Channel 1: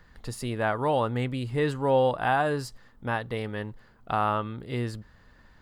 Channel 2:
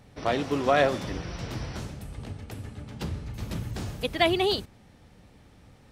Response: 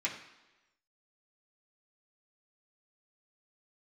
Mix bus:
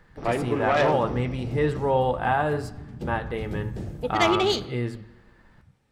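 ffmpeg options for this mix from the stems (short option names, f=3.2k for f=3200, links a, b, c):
-filter_complex "[0:a]highshelf=f=2.4k:g=-10,volume=1.5dB,asplit=2[a][b];[b]volume=-8dB[c];[1:a]afwtdn=0.0158,asoftclip=type=tanh:threshold=-17dB,volume=2dB,asplit=2[d][e];[e]volume=-10.5dB[f];[2:a]atrim=start_sample=2205[g];[c][f]amix=inputs=2:normalize=0[h];[h][g]afir=irnorm=-1:irlink=0[i];[a][d][i]amix=inputs=3:normalize=0"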